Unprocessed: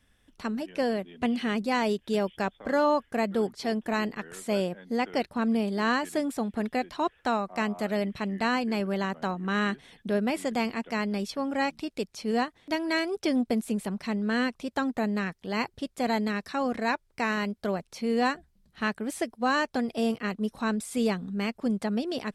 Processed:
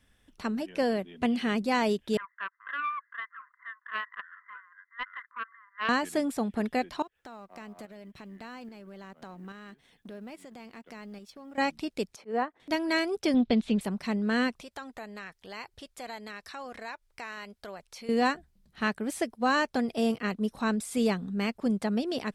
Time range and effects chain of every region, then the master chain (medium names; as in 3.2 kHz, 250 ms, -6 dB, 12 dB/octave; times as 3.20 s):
2.17–5.89 s: brick-wall FIR band-pass 980–2100 Hz + loudspeaker Doppler distortion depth 0.73 ms
7.02–11.58 s: companding laws mixed up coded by A + compression 4:1, threshold -42 dBFS + tremolo saw up 1.2 Hz, depth 45%
12.16–12.60 s: three-band isolator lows -22 dB, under 260 Hz, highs -18 dB, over 2 kHz + slow attack 112 ms
13.34–13.81 s: resonant low-pass 3.6 kHz, resonance Q 3.2 + bass shelf 140 Hz +9 dB
14.61–18.09 s: peaking EQ 210 Hz -13 dB 2.2 oct + compression 2:1, threshold -43 dBFS
whole clip: none